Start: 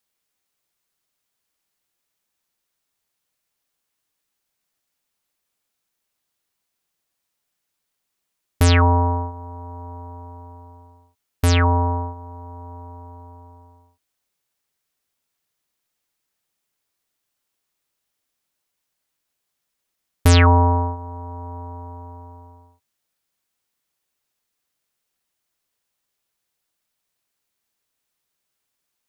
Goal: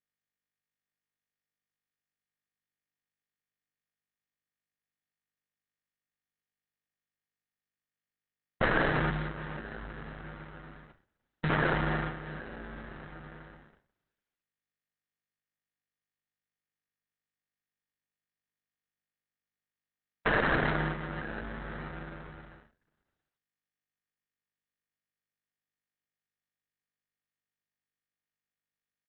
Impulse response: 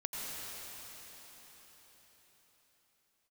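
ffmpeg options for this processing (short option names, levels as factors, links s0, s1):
-filter_complex "[0:a]aecho=1:1:956:0.0668,acrusher=bits=9:mix=0:aa=0.000001,afreqshift=66,agate=range=0.0224:threshold=0.00562:ratio=3:detection=peak,acrusher=samples=41:mix=1:aa=0.000001,asettb=1/sr,asplit=3[s0][s1][s2];[s0]atrim=end=9.104[s3];[s1]atrim=start=9.1:end=11.5,asetpts=PTS-STARTPTS,afade=t=in:d=0.004:c=qsin,afade=t=out:st=2.396:d=0.004:c=qsin,acrossover=split=180|3000[s4][s5][s6];[s5]acompressor=threshold=0.0282:ratio=10[s7];[s4][s7][s6]amix=inputs=3:normalize=0[s8];[s2]atrim=start=11.496[s9];[s3][s8]acrossfade=d=0.004:c1=hsin:c2=qsin[s10];[s10][s9]acrossfade=d=0.004:c1=qsin:c2=hsin,lowshelf=f=360:g=-3.5,aeval=exprs='(mod(4.47*val(0)+1,2)-1)/4.47':c=same,equalizer=f=100:t=o:w=0.67:g=-5,equalizer=f=1600:t=o:w=0.67:g=11,equalizer=f=4000:t=o:w=0.67:g=-6,equalizer=f=10000:t=o:w=0.67:g=-8,acompressor=threshold=0.0447:ratio=2,bandreject=f=2500:w=9.9,volume=0.841" -ar 48000 -c:a libopus -b:a 6k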